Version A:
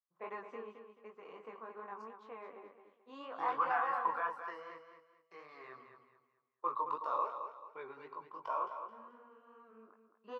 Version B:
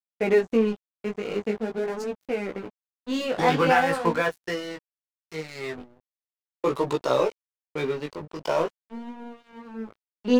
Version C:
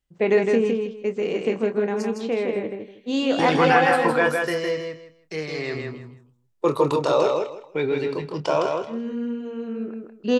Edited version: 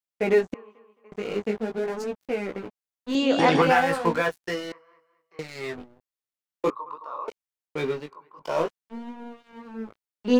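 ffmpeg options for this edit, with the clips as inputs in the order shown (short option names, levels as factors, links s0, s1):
-filter_complex "[0:a]asplit=4[s0][s1][s2][s3];[1:a]asplit=6[s4][s5][s6][s7][s8][s9];[s4]atrim=end=0.542[s10];[s0]atrim=start=0.538:end=1.122[s11];[s5]atrim=start=1.118:end=3.152[s12];[2:a]atrim=start=3.148:end=3.622[s13];[s6]atrim=start=3.618:end=4.722[s14];[s1]atrim=start=4.718:end=5.392[s15];[s7]atrim=start=5.388:end=6.702[s16];[s2]atrim=start=6.698:end=7.282[s17];[s8]atrim=start=7.278:end=8.17[s18];[s3]atrim=start=7.93:end=8.6[s19];[s9]atrim=start=8.36[s20];[s10][s11]acrossfade=d=0.004:c1=hsin:c2=hsin[s21];[s21][s12]acrossfade=d=0.004:c1=hsin:c2=hsin[s22];[s22][s13]acrossfade=d=0.004:c1=hsin:c2=hsin[s23];[s23][s14]acrossfade=d=0.004:c1=hsin:c2=hsin[s24];[s24][s15]acrossfade=d=0.004:c1=hsin:c2=hsin[s25];[s25][s16]acrossfade=d=0.004:c1=hsin:c2=hsin[s26];[s26][s17]acrossfade=d=0.004:c1=hsin:c2=hsin[s27];[s27][s18]acrossfade=d=0.004:c1=hsin:c2=hsin[s28];[s28][s19]acrossfade=d=0.24:c1=tri:c2=tri[s29];[s29][s20]acrossfade=d=0.24:c1=tri:c2=tri"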